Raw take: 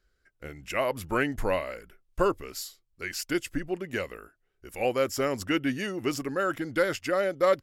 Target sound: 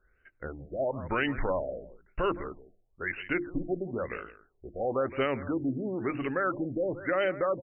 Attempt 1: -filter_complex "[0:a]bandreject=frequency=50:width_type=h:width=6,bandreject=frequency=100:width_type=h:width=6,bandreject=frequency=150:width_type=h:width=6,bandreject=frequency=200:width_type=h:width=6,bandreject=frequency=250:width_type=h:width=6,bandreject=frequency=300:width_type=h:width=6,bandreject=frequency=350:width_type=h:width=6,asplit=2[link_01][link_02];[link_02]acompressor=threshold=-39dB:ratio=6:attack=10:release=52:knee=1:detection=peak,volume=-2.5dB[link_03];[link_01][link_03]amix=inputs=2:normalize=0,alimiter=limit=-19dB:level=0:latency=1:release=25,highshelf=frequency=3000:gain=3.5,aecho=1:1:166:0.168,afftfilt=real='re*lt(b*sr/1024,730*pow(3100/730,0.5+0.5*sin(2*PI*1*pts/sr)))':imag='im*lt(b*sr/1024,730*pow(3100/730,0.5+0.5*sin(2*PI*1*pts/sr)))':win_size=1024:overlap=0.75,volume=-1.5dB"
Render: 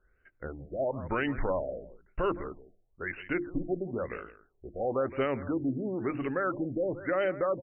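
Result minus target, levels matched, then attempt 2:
4,000 Hz band −5.0 dB
-filter_complex "[0:a]bandreject=frequency=50:width_type=h:width=6,bandreject=frequency=100:width_type=h:width=6,bandreject=frequency=150:width_type=h:width=6,bandreject=frequency=200:width_type=h:width=6,bandreject=frequency=250:width_type=h:width=6,bandreject=frequency=300:width_type=h:width=6,bandreject=frequency=350:width_type=h:width=6,asplit=2[link_01][link_02];[link_02]acompressor=threshold=-39dB:ratio=6:attack=10:release=52:knee=1:detection=peak,volume=-2.5dB[link_03];[link_01][link_03]amix=inputs=2:normalize=0,alimiter=limit=-19dB:level=0:latency=1:release=25,highshelf=frequency=3000:gain=15,aecho=1:1:166:0.168,afftfilt=real='re*lt(b*sr/1024,730*pow(3100/730,0.5+0.5*sin(2*PI*1*pts/sr)))':imag='im*lt(b*sr/1024,730*pow(3100/730,0.5+0.5*sin(2*PI*1*pts/sr)))':win_size=1024:overlap=0.75,volume=-1.5dB"

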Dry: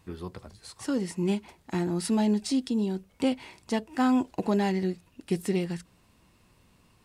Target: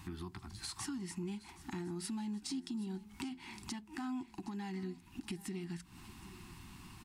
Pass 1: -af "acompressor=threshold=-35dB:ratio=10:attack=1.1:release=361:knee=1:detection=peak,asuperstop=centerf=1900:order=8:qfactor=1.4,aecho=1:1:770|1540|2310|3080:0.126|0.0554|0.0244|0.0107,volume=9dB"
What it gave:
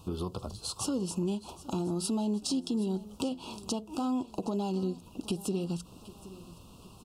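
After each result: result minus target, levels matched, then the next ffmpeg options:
2,000 Hz band −13.0 dB; downward compressor: peak gain reduction −9 dB
-af "acompressor=threshold=-35dB:ratio=10:attack=1.1:release=361:knee=1:detection=peak,asuperstop=centerf=530:order=8:qfactor=1.4,aecho=1:1:770|1540|2310|3080:0.126|0.0554|0.0244|0.0107,volume=9dB"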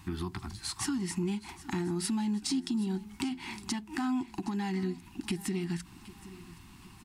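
downward compressor: peak gain reduction −9 dB
-af "acompressor=threshold=-45dB:ratio=10:attack=1.1:release=361:knee=1:detection=peak,asuperstop=centerf=530:order=8:qfactor=1.4,aecho=1:1:770|1540|2310|3080:0.126|0.0554|0.0244|0.0107,volume=9dB"

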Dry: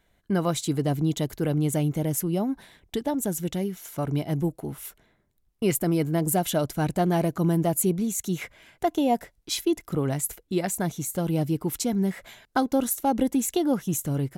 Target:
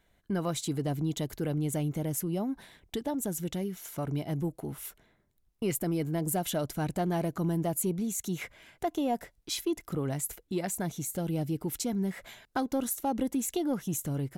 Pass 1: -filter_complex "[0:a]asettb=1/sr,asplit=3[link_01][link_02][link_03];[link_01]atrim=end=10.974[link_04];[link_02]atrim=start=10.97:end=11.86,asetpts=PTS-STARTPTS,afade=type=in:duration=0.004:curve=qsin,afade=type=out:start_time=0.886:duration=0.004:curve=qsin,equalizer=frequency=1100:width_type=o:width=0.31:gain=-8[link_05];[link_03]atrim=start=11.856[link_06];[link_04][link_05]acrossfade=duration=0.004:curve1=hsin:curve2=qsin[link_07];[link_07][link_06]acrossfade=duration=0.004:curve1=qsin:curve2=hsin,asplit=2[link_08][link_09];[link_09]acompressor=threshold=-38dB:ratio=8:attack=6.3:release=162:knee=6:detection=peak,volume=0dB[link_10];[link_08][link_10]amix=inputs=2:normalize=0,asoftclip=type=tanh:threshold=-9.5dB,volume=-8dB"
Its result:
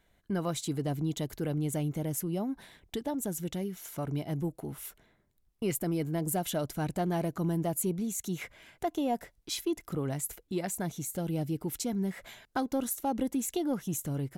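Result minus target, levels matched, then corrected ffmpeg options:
downward compressor: peak gain reduction +5.5 dB
-filter_complex "[0:a]asettb=1/sr,asplit=3[link_01][link_02][link_03];[link_01]atrim=end=10.974[link_04];[link_02]atrim=start=10.97:end=11.86,asetpts=PTS-STARTPTS,afade=type=in:duration=0.004:curve=qsin,afade=type=out:start_time=0.886:duration=0.004:curve=qsin,equalizer=frequency=1100:width_type=o:width=0.31:gain=-8[link_05];[link_03]atrim=start=11.856[link_06];[link_04][link_05]acrossfade=duration=0.004:curve1=hsin:curve2=qsin[link_07];[link_07][link_06]acrossfade=duration=0.004:curve1=qsin:curve2=hsin,asplit=2[link_08][link_09];[link_09]acompressor=threshold=-31.5dB:ratio=8:attack=6.3:release=162:knee=6:detection=peak,volume=0dB[link_10];[link_08][link_10]amix=inputs=2:normalize=0,asoftclip=type=tanh:threshold=-9.5dB,volume=-8dB"

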